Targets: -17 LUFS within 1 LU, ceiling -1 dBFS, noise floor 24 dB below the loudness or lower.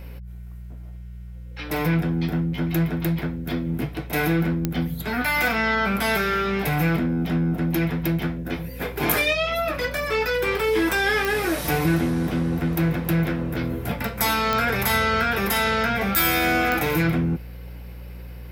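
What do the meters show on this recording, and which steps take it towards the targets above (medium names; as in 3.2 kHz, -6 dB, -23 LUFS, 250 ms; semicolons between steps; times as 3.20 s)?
clicks found 4; hum 60 Hz; highest harmonic 180 Hz; hum level -35 dBFS; loudness -23.0 LUFS; peak level -5.5 dBFS; loudness target -17.0 LUFS
-> de-click; de-hum 60 Hz, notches 3; trim +6 dB; peak limiter -1 dBFS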